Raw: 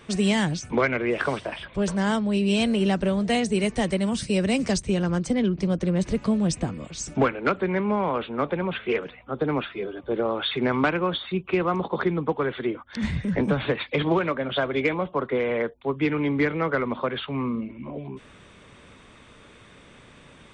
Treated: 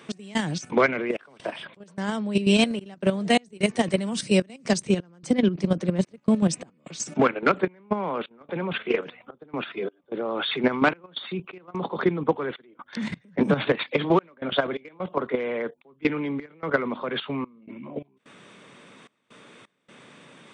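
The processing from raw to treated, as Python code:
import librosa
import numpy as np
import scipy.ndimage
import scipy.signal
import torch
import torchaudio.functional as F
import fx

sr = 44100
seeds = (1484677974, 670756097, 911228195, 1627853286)

y = scipy.signal.sosfilt(scipy.signal.butter(4, 150.0, 'highpass', fs=sr, output='sos'), x)
y = fx.level_steps(y, sr, step_db=11)
y = fx.step_gate(y, sr, bpm=129, pattern='x..xxxxxxx..xx', floor_db=-24.0, edge_ms=4.5)
y = y * librosa.db_to_amplitude(5.0)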